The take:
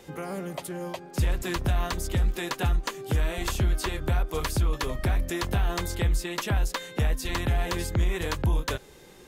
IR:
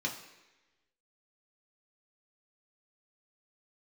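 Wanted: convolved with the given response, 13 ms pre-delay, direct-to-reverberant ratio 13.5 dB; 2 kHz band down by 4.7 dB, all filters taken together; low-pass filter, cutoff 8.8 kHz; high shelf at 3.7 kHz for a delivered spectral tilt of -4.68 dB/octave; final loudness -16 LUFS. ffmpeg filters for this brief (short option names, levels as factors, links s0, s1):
-filter_complex "[0:a]lowpass=8800,equalizer=f=2000:t=o:g=-8,highshelf=f=3700:g=7,asplit=2[s0][s1];[1:a]atrim=start_sample=2205,adelay=13[s2];[s1][s2]afir=irnorm=-1:irlink=0,volume=0.133[s3];[s0][s3]amix=inputs=2:normalize=0,volume=4.47"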